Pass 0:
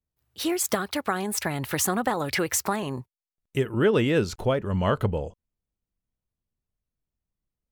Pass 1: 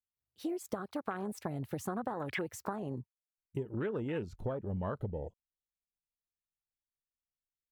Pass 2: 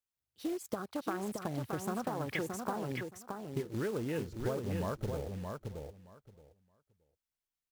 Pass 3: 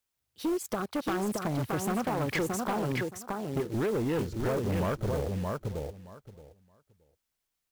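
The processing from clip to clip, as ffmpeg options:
-af "afwtdn=0.0355,acompressor=threshold=-28dB:ratio=6,volume=-5dB"
-filter_complex "[0:a]acrusher=bits=4:mode=log:mix=0:aa=0.000001,asplit=2[a][b];[b]aecho=0:1:622|1244|1866:0.562|0.09|0.0144[c];[a][c]amix=inputs=2:normalize=0"
-af "volume=34dB,asoftclip=hard,volume=-34dB,volume=8.5dB"

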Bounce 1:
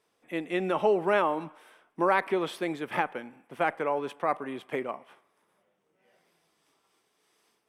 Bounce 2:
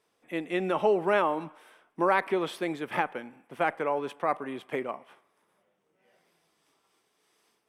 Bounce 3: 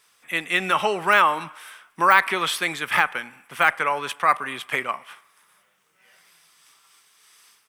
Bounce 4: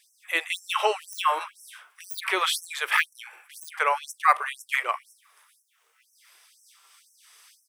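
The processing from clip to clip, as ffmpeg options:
-af anull
-af "deesser=0.95,firequalizer=gain_entry='entry(130,0);entry(290,-8);entry(720,-2);entry(1200,10);entry(7700,15)':delay=0.05:min_phase=1,volume=4dB"
-af "afftfilt=real='re*gte(b*sr/1024,330*pow(5400/330,0.5+0.5*sin(2*PI*2*pts/sr)))':imag='im*gte(b*sr/1024,330*pow(5400/330,0.5+0.5*sin(2*PI*2*pts/sr)))':win_size=1024:overlap=0.75"

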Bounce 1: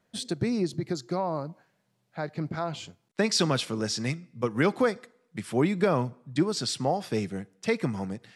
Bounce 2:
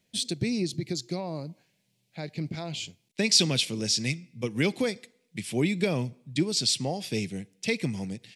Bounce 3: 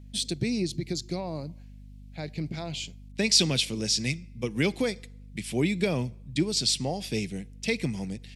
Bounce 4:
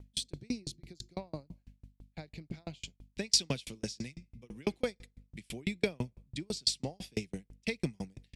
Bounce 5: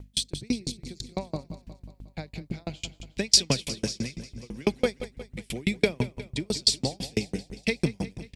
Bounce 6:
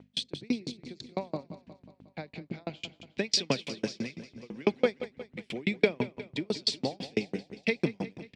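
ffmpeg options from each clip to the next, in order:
-af "firequalizer=gain_entry='entry(170,0);entry(1300,-15);entry(2300,6)':delay=0.05:min_phase=1"
-af "aeval=exprs='val(0)+0.00562*(sin(2*PI*50*n/s)+sin(2*PI*2*50*n/s)/2+sin(2*PI*3*50*n/s)/3+sin(2*PI*4*50*n/s)/4+sin(2*PI*5*50*n/s)/5)':c=same"
-af "aeval=exprs='val(0)*pow(10,-39*if(lt(mod(6*n/s,1),2*abs(6)/1000),1-mod(6*n/s,1)/(2*abs(6)/1000),(mod(6*n/s,1)-2*abs(6)/1000)/(1-2*abs(6)/1000))/20)':c=same"
-af "aecho=1:1:180|360|540|720|900|1080:0.211|0.118|0.0663|0.0371|0.0208|0.0116,volume=8dB"
-af "highpass=210,lowpass=3.3k"

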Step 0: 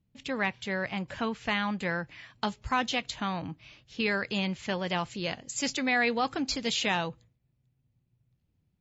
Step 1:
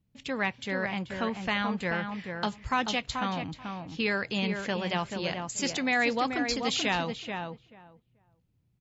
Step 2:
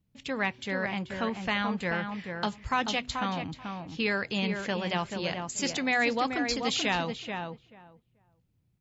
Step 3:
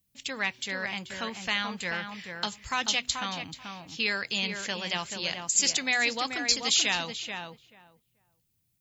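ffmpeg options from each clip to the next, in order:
-filter_complex "[0:a]asplit=2[a][b];[b]adelay=434,lowpass=f=1.7k:p=1,volume=-5dB,asplit=2[c][d];[d]adelay=434,lowpass=f=1.7k:p=1,volume=0.15,asplit=2[e][f];[f]adelay=434,lowpass=f=1.7k:p=1,volume=0.15[g];[a][c][e][g]amix=inputs=4:normalize=0"
-af "bandreject=f=124.4:t=h:w=4,bandreject=f=248.8:t=h:w=4,bandreject=f=373.2:t=h:w=4"
-af "crystalizer=i=8.5:c=0,volume=-7.5dB"

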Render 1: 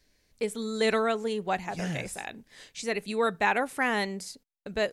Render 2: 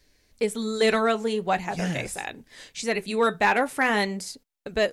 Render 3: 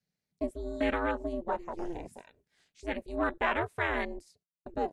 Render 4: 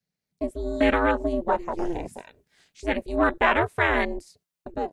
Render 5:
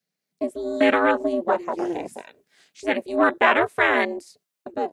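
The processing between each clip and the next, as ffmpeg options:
-filter_complex "[0:a]flanger=delay=2.2:depth=6:regen=-69:speed=0.44:shape=sinusoidal,asplit=2[a][b];[b]aeval=exprs='0.0631*(abs(mod(val(0)/0.0631+3,4)-2)-1)':c=same,volume=-10dB[c];[a][c]amix=inputs=2:normalize=0,volume=6.5dB"
-af "afwtdn=0.0398,aeval=exprs='val(0)*sin(2*PI*170*n/s)':c=same,volume=-5dB"
-af "dynaudnorm=f=200:g=5:m=9dB"
-af "highpass=230,bandreject=f=910:w=17,volume=3.5dB"

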